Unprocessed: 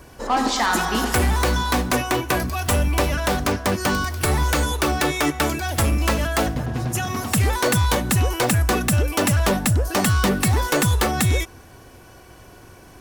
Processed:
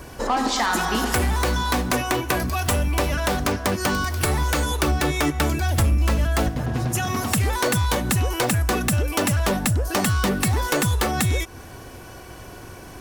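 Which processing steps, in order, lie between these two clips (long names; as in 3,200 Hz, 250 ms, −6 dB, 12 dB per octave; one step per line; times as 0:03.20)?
0:04.82–0:06.49: low-shelf EQ 170 Hz +10.5 dB
downward compressor 2.5 to 1, threshold −28 dBFS, peak gain reduction 13 dB
level +5.5 dB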